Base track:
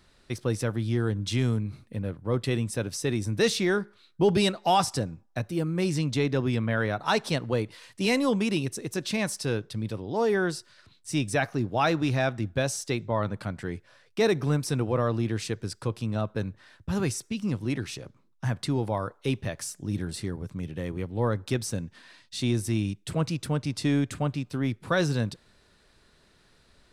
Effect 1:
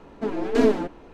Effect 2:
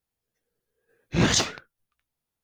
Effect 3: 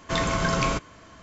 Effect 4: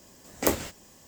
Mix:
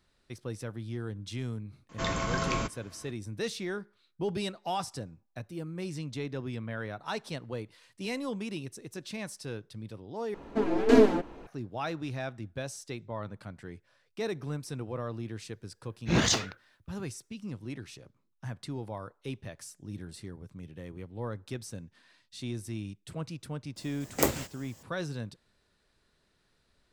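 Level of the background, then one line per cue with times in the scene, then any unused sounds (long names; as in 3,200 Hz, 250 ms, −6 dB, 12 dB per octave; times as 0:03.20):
base track −10.5 dB
0:01.89: mix in 3 −6.5 dB
0:10.34: overwrite with 1 −0.5 dB
0:14.94: mix in 2 −4 dB
0:23.76: mix in 4 −1.5 dB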